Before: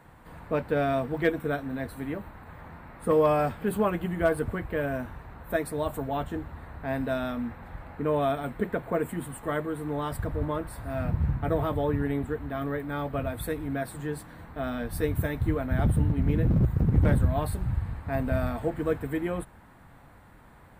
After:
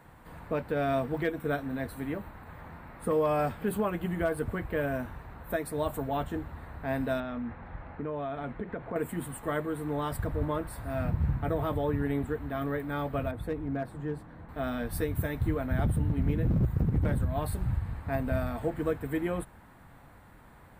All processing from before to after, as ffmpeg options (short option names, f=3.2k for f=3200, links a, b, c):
-filter_complex "[0:a]asettb=1/sr,asplit=3[a][b][c];[a]atrim=end=7.204[d];[b]atrim=start=7.2:end=8.96,asetpts=PTS-STARTPTS,afade=t=in:d=0.004:c=qsin,afade=t=out:st=1.756:d=0.004:c=qsin,lowpass=2.9k,acompressor=threshold=-30dB:ratio=6:attack=3.2:release=140:knee=1:detection=peak[e];[c]atrim=start=8.956[f];[d][e]acrossfade=d=0.004:c1=hsin:c2=qsin[g];[g][f]acrossfade=d=0.004:c1=qsin:c2=hsin,asettb=1/sr,asplit=3[h][i][j];[h]atrim=end=13.314[k];[i]atrim=start=13.31:end=14.49,asetpts=PTS-STARTPTS,afade=t=in:d=0.004:c=qsin,afade=t=out:st=1.176:d=0.004:c=qsin,lowpass=f=1k:p=1,asoftclip=type=hard:threshold=-23.5dB[l];[j]atrim=start=14.486[m];[k][l]acrossfade=d=0.004:c1=hsin:c2=qsin[n];[n][m]acrossfade=d=0.004:c1=qsin:c2=hsin,lowpass=f=2.2k:p=1,aemphasis=mode=production:type=75kf,alimiter=limit=-18dB:level=0:latency=1:release=241,volume=-1dB"